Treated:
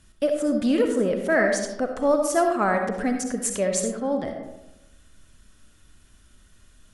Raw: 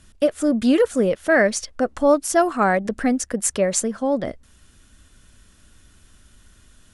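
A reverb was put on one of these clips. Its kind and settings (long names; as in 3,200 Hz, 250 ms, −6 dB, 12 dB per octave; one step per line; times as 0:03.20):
comb and all-pass reverb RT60 0.97 s, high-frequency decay 0.4×, pre-delay 25 ms, DRR 4 dB
level −5 dB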